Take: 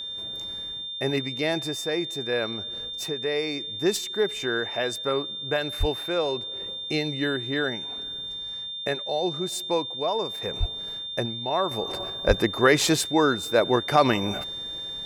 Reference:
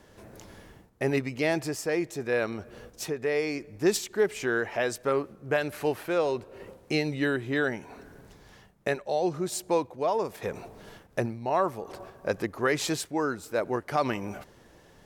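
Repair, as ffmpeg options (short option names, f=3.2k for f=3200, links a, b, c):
-filter_complex "[0:a]bandreject=f=3.6k:w=30,asplit=3[a][b][c];[a]afade=t=out:st=5.79:d=0.02[d];[b]highpass=f=140:w=0.5412,highpass=f=140:w=1.3066,afade=t=in:st=5.79:d=0.02,afade=t=out:st=5.91:d=0.02[e];[c]afade=t=in:st=5.91:d=0.02[f];[d][e][f]amix=inputs=3:normalize=0,asplit=3[g][h][i];[g]afade=t=out:st=10.59:d=0.02[j];[h]highpass=f=140:w=0.5412,highpass=f=140:w=1.3066,afade=t=in:st=10.59:d=0.02,afade=t=out:st=10.71:d=0.02[k];[i]afade=t=in:st=10.71:d=0.02[l];[j][k][l]amix=inputs=3:normalize=0,asplit=3[m][n][o];[m]afade=t=out:st=12.27:d=0.02[p];[n]highpass=f=140:w=0.5412,highpass=f=140:w=1.3066,afade=t=in:st=12.27:d=0.02,afade=t=out:st=12.39:d=0.02[q];[o]afade=t=in:st=12.39:d=0.02[r];[p][q][r]amix=inputs=3:normalize=0,asetnsamples=n=441:p=0,asendcmd='11.71 volume volume -7.5dB',volume=0dB"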